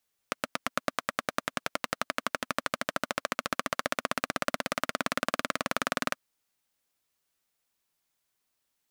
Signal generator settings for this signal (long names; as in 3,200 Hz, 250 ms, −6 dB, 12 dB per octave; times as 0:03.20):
pulse-train model of a single-cylinder engine, changing speed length 5.84 s, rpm 1,000, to 2,400, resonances 260/600/1,200 Hz